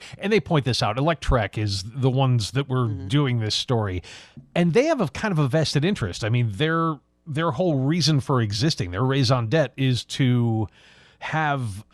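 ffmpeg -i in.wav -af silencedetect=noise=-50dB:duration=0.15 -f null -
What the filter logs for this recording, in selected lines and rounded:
silence_start: 6.98
silence_end: 7.27 | silence_duration: 0.28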